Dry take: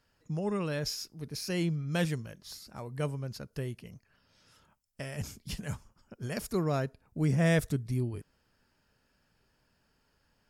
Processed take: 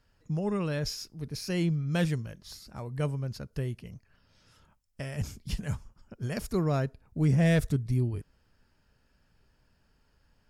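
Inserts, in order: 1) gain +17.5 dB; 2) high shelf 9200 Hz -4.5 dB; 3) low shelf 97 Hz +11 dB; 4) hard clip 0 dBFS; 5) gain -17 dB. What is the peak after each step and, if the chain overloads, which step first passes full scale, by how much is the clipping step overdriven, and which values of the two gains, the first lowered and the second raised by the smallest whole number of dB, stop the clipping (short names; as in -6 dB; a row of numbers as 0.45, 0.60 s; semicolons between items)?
+1.0, +1.0, +4.0, 0.0, -17.0 dBFS; step 1, 4.0 dB; step 1 +13.5 dB, step 5 -13 dB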